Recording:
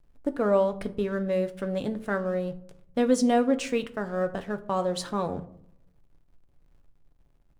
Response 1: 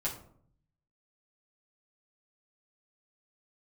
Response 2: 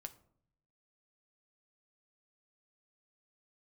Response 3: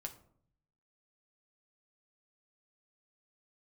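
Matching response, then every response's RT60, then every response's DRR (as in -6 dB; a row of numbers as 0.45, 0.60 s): 2; 0.60, 0.65, 0.60 s; -6.5, 7.5, 3.0 dB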